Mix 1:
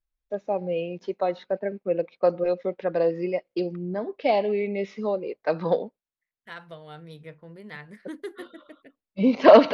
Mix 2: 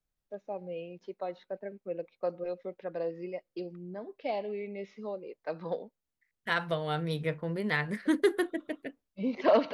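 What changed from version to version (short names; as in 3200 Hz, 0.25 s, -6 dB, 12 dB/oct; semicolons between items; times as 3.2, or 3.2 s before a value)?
first voice -11.5 dB; second voice +11.0 dB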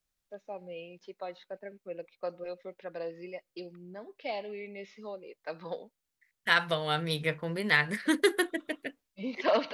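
second voice +4.0 dB; master: add tilt shelf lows -5.5 dB, about 1200 Hz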